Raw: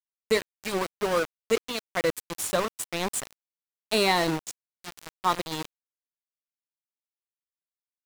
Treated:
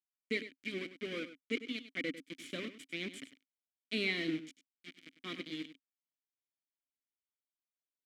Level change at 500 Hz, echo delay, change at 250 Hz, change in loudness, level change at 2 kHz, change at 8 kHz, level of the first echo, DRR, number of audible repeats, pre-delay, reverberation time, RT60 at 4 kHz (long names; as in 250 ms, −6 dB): −15.5 dB, 99 ms, −7.0 dB, −11.5 dB, −7.5 dB, −23.5 dB, −13.0 dB, no reverb audible, 1, no reverb audible, no reverb audible, no reverb audible